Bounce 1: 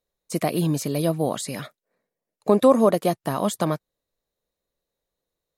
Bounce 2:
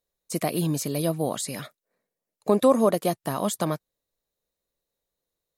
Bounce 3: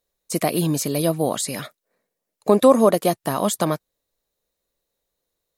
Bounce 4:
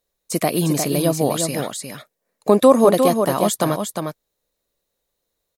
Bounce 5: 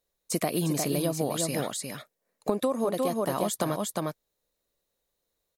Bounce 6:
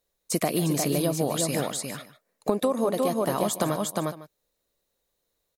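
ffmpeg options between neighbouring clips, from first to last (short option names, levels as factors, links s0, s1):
-af "highshelf=f=4900:g=5.5,volume=0.708"
-af "equalizer=f=140:w=1.2:g=-2.5,volume=1.88"
-af "aecho=1:1:355:0.501,volume=1.19"
-af "acompressor=threshold=0.112:ratio=10,volume=0.631"
-af "aecho=1:1:149:0.168,volume=1.33"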